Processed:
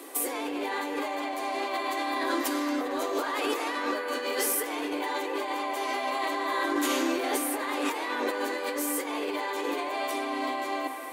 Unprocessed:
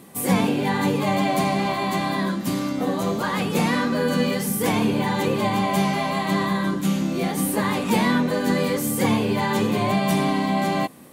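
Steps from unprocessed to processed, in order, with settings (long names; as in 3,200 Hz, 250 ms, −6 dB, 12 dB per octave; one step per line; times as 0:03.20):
Chebyshev high-pass filter 270 Hz, order 8
compressor whose output falls as the input rises −31 dBFS, ratio −1
soft clipping −13.5 dBFS, distortion −33 dB
delay with a band-pass on its return 222 ms, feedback 65%, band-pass 1,300 Hz, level −6 dB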